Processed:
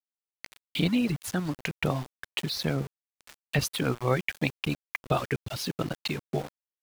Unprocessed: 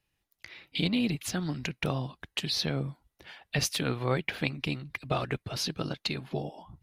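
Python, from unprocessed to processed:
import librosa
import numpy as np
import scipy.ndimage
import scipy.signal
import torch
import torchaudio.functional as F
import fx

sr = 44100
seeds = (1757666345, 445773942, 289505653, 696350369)

y = fx.dereverb_blind(x, sr, rt60_s=1.3)
y = fx.dynamic_eq(y, sr, hz=5400.0, q=0.8, threshold_db=-47.0, ratio=4.0, max_db=-7)
y = np.where(np.abs(y) >= 10.0 ** (-40.5 / 20.0), y, 0.0)
y = F.gain(torch.from_numpy(y), 4.0).numpy()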